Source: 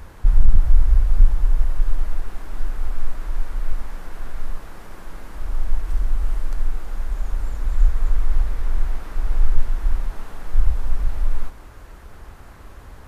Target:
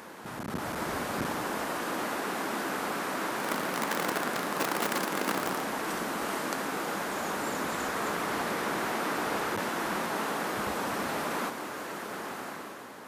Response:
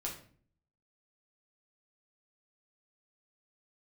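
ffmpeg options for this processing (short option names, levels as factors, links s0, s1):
-filter_complex "[0:a]asettb=1/sr,asplit=3[s0][s1][s2];[s0]atrim=end=3.404[s3];[s1]atrim=start=3.4:end=5.62,asetpts=PTS-STARTPTS,afade=t=in:d=0.004:c=qsin,afade=t=out:st=2.216:d=0.004:c=qsin,aeval=exprs='val(0)+0.5*0.0211*sgn(val(0))':c=same[s4];[s2]atrim=start=5.616[s5];[s3][s4]acrossfade=d=0.004:c1=hsin:c2=qsin[s6];[s6][s5]acrossfade=d=0.004:c1=qsin:c2=hsin,highpass=f=200:w=0.5412,highpass=f=200:w=1.3066,dynaudnorm=f=110:g=11:m=2.66,volume=1.41"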